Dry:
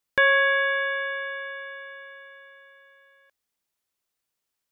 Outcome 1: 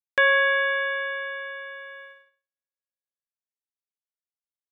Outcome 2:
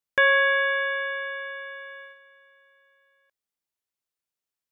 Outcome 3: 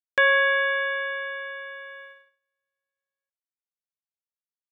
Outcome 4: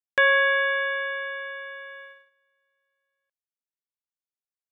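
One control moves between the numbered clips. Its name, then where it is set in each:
gate, range: -54, -8, -35, -23 dB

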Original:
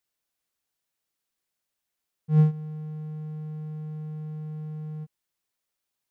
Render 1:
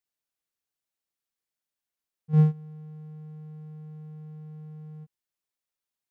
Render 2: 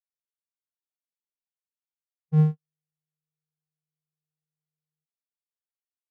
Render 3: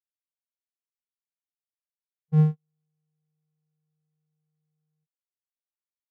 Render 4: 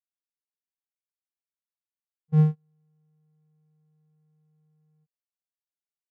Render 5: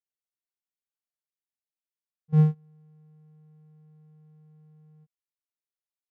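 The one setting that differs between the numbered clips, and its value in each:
gate, range: -7, -59, -45, -32, -20 dB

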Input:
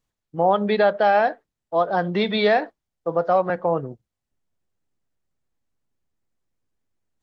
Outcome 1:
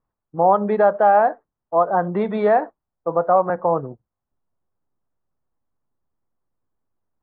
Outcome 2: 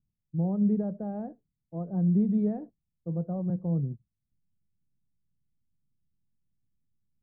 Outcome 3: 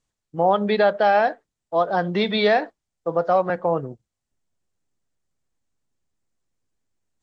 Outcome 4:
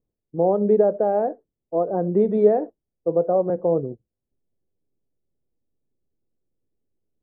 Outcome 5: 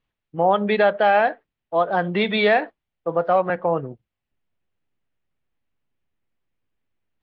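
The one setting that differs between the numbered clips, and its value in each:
synth low-pass, frequency: 1100, 170, 8000, 440, 2800 Hz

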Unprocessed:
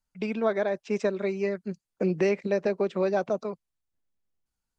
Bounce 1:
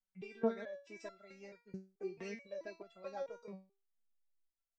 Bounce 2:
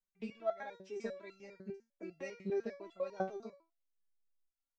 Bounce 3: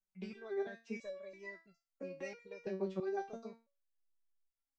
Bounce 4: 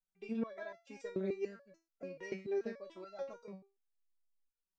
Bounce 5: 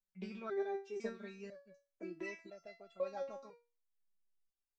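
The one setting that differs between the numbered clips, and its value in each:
stepped resonator, rate: 4.6, 10, 3, 6.9, 2 Hz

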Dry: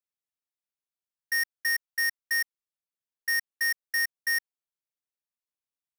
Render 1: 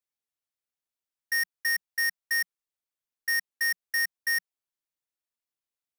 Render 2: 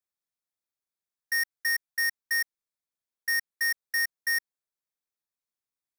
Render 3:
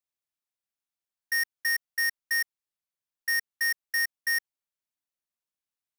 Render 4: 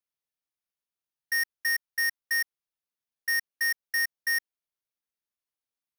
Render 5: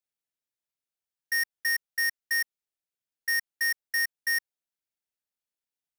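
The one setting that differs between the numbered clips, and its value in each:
notch, frequency: 180, 2900, 450, 7600, 1100 Hz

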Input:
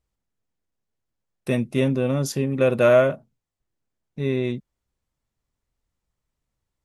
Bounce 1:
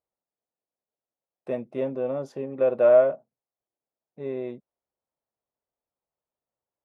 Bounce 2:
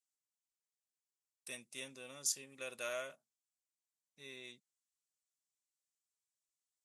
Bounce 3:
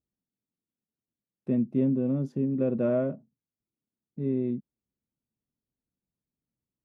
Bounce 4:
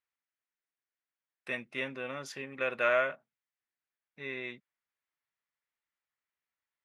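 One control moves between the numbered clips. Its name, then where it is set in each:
band-pass, frequency: 640, 7800, 230, 1900 Hz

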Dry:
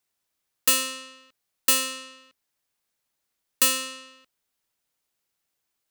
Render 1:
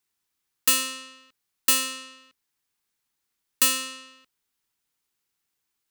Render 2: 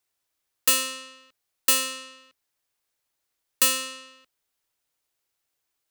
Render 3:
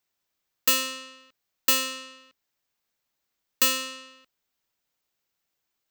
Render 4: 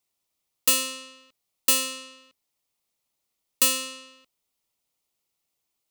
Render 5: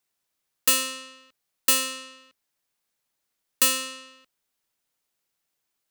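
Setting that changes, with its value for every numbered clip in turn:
bell, frequency: 610, 200, 10000, 1600, 67 Hz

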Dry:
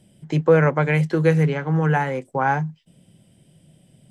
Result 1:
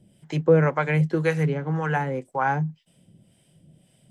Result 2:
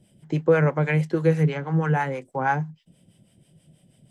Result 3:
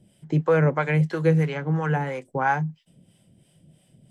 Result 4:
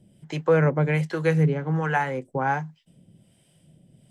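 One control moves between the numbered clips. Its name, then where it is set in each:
harmonic tremolo, rate: 1.9, 6.2, 3, 1.3 Hz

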